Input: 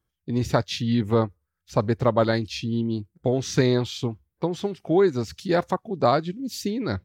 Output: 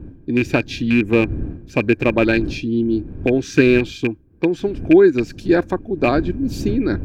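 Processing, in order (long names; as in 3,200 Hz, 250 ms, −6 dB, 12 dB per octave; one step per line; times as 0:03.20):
loose part that buzzes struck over −21 dBFS, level −16 dBFS
wind on the microphone 93 Hz −30 dBFS
hollow resonant body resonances 310/1,600/2,400 Hz, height 15 dB, ringing for 25 ms
level −2 dB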